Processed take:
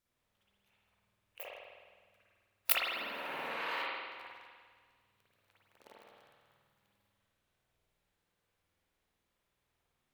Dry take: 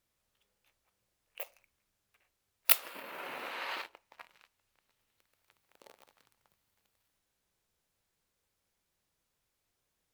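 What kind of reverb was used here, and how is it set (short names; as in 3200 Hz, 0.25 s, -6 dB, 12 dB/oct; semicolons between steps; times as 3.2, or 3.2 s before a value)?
spring tank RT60 1.6 s, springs 50 ms, chirp 30 ms, DRR -7.5 dB; gain -5.5 dB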